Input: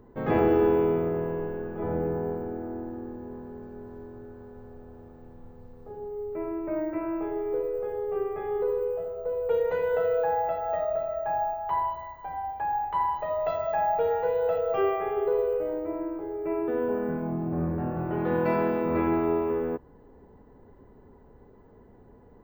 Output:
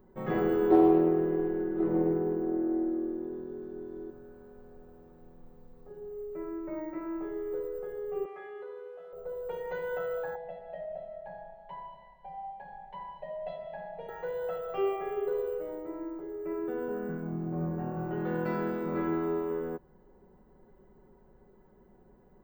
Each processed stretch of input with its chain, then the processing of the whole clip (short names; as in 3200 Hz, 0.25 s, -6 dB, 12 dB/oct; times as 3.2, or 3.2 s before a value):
0.7–4.1 small resonant body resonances 340/3500 Hz, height 16 dB, ringing for 60 ms + Doppler distortion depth 0.39 ms
8.25–9.13 band-pass 2800 Hz, Q 0.52 + fast leveller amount 50%
10.35–14.09 LPF 3600 Hz + fixed phaser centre 340 Hz, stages 6
whole clip: high shelf 11000 Hz +9 dB; comb 5.4 ms, depth 76%; gain -7.5 dB